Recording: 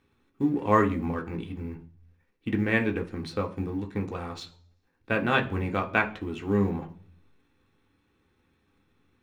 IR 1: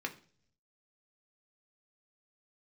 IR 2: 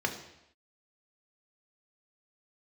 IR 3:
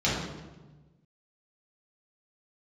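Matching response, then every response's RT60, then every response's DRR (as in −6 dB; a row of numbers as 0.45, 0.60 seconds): 1; non-exponential decay, non-exponential decay, 1.2 s; 2.5, 3.0, −7.5 decibels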